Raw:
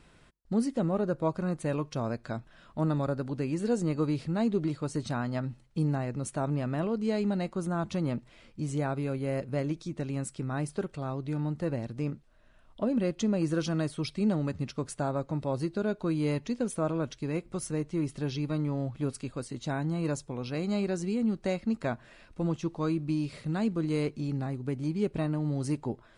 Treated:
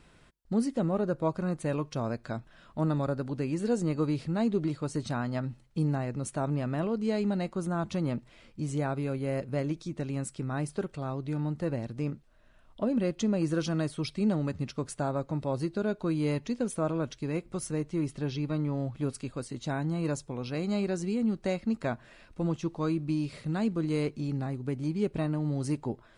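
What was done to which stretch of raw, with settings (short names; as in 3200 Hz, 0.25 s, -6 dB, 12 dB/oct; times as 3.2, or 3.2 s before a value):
18.12–18.74 high shelf 7900 Hz -9 dB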